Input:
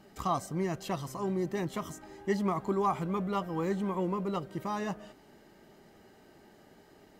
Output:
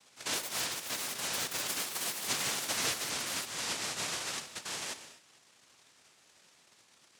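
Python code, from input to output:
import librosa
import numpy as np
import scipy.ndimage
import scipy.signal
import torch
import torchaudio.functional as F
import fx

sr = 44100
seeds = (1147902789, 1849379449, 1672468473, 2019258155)

y = fx.noise_vocoder(x, sr, seeds[0], bands=1)
y = fx.rev_gated(y, sr, seeds[1], gate_ms=280, shape='flat', drr_db=12.0)
y = fx.echo_pitch(y, sr, ms=158, semitones=7, count=2, db_per_echo=-3.0)
y = y * 10.0 ** (-5.5 / 20.0)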